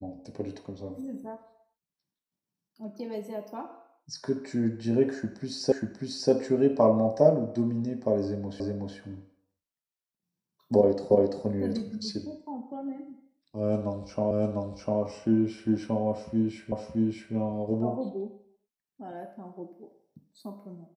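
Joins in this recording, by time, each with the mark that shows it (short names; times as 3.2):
5.72 repeat of the last 0.59 s
8.6 repeat of the last 0.37 s
11.11 repeat of the last 0.34 s
14.31 repeat of the last 0.7 s
16.72 repeat of the last 0.62 s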